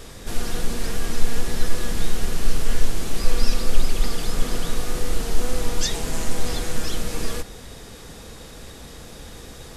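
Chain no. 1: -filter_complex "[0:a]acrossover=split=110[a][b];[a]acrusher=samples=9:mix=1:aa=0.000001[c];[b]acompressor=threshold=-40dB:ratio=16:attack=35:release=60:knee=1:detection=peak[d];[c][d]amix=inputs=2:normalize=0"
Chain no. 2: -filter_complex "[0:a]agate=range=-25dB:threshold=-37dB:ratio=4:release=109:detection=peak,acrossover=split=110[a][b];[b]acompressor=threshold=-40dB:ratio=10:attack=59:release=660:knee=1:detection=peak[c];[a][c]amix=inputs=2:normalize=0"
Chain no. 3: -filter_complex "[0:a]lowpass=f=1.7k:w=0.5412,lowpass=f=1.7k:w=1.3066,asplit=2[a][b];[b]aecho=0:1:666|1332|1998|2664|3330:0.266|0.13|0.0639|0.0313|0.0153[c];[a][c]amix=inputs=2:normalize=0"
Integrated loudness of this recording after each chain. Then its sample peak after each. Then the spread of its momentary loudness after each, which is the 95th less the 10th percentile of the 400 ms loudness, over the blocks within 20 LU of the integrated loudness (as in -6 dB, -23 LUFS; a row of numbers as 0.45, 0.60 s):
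-33.5, -33.5, -31.0 LUFS; -3.0, -3.0, -2.0 dBFS; 11, 15, 13 LU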